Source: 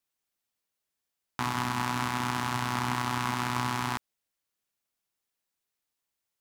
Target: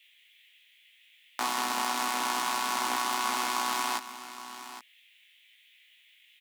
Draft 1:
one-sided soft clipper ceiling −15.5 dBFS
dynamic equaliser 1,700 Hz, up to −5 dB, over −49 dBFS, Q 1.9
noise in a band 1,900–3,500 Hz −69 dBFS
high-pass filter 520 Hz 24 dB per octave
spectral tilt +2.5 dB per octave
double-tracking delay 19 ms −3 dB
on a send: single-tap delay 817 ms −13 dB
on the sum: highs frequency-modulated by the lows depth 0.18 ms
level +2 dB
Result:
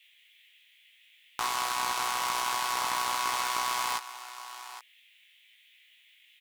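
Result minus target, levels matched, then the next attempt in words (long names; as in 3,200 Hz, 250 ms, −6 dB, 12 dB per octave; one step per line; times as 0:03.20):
250 Hz band −10.5 dB
one-sided soft clipper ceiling −15.5 dBFS
dynamic equaliser 1,700 Hz, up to −5 dB, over −49 dBFS, Q 1.9
noise in a band 1,900–3,500 Hz −69 dBFS
high-pass filter 230 Hz 24 dB per octave
spectral tilt +2.5 dB per octave
double-tracking delay 19 ms −3 dB
on a send: single-tap delay 817 ms −13 dB
on the sum: highs frequency-modulated by the lows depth 0.18 ms
level +2 dB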